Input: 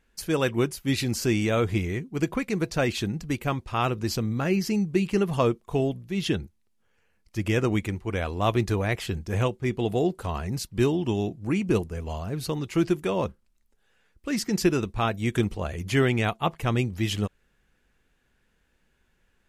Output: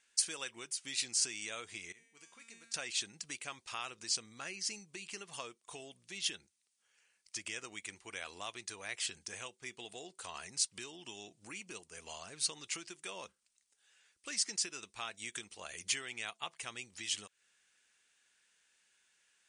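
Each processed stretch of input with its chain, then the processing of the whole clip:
0:01.92–0:02.74: downward compressor 2.5 to 1, threshold −28 dBFS + tuned comb filter 230 Hz, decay 0.88 s, mix 90%
whole clip: Chebyshev low-pass filter 9,700 Hz, order 8; downward compressor 6 to 1, threshold −33 dBFS; first difference; level +10 dB

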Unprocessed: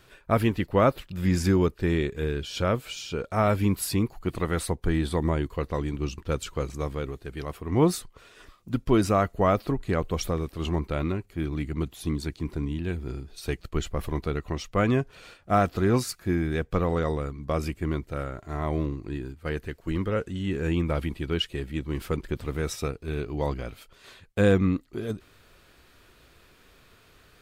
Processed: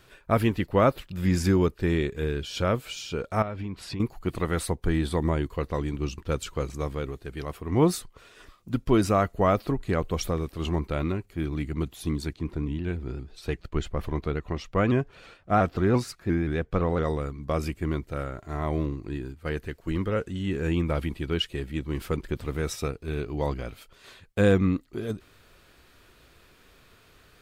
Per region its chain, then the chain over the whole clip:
0:03.42–0:04.00: low-pass filter 4,000 Hz + downward compressor, threshold −30 dBFS
0:12.33–0:17.04: low-pass filter 3,500 Hz 6 dB per octave + pitch modulation by a square or saw wave saw up 5.8 Hz, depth 100 cents
whole clip: no processing

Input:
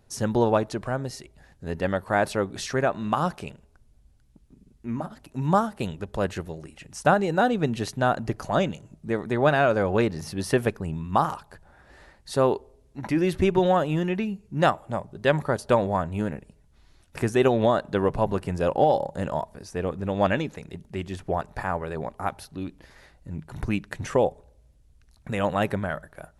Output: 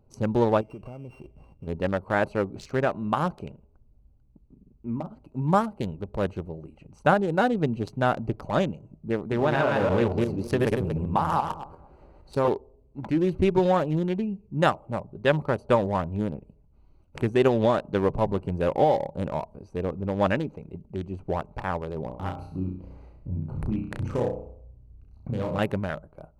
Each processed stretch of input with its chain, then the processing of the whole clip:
0:00.61–0:01.67: samples sorted by size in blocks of 16 samples + downward compressor, threshold −39 dBFS + leveller curve on the samples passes 1
0:09.20–0:12.48: feedback delay that plays each chunk backwards 116 ms, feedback 41%, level −0.5 dB + dynamic equaliser 920 Hz, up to +6 dB, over −38 dBFS, Q 4.1 + downward compressor 3 to 1, threshold −18 dBFS
0:22.06–0:25.59: low-shelf EQ 340 Hz +6.5 dB + downward compressor 2 to 1, threshold −30 dBFS + flutter between parallel walls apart 5.6 metres, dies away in 0.57 s
whole clip: adaptive Wiener filter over 25 samples; notch filter 700 Hz, Q 14

